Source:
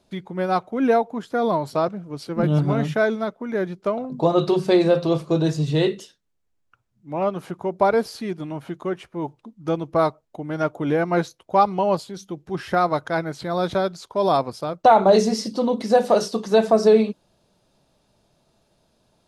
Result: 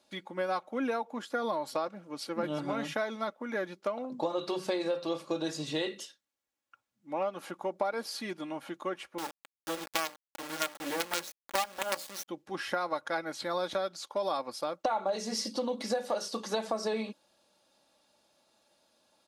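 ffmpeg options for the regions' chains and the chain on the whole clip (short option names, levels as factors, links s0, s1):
-filter_complex "[0:a]asettb=1/sr,asplit=3[s0][s1][s2];[s0]atrim=end=9.184[s3];[s1]atrim=start=9.18:end=12.28,asetpts=PTS-STARTPTS,afade=t=in:d=0.004:c=qsin,afade=t=out:st=3.096:d=0.004:c=qsin,aemphasis=mode=production:type=50kf,bandreject=f=60:t=h:w=6,bandreject=f=120:t=h:w=6,bandreject=f=180:t=h:w=6,bandreject=f=240:t=h:w=6,bandreject=f=300:t=h:w=6,bandreject=f=360:t=h:w=6,bandreject=f=420:t=h:w=6,bandreject=f=480:t=h:w=6,bandreject=f=540:t=h:w=6,bandreject=f=600:t=h:w=6,acrusher=bits=3:dc=4:mix=0:aa=0.000001[s4];[s2]atrim=start=12.276[s5];[s3][s4]acrossfade=d=0.004:c1=hsin:c2=qsin[s6];[s6][s5]acrossfade=d=0.004:c1=qsin:c2=hsin,highpass=f=760:p=1,aecho=1:1:3.6:0.49,acompressor=threshold=0.0447:ratio=6,volume=0.841"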